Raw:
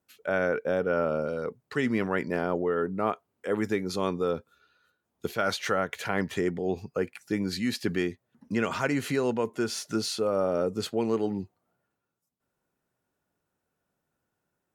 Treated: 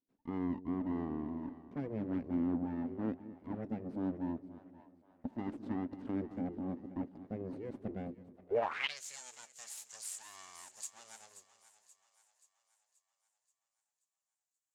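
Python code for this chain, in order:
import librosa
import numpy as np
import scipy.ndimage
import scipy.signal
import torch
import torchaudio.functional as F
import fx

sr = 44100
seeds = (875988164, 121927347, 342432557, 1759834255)

p1 = np.abs(x)
p2 = fx.echo_split(p1, sr, split_hz=560.0, low_ms=216, high_ms=530, feedback_pct=52, wet_db=-12.5)
p3 = fx.backlash(p2, sr, play_db=-35.0)
p4 = p2 + F.gain(torch.from_numpy(p3), -7.0).numpy()
p5 = fx.filter_sweep_bandpass(p4, sr, from_hz=260.0, to_hz=7200.0, start_s=8.45, end_s=9.02, q=4.8)
y = F.gain(torch.from_numpy(p5), 3.5).numpy()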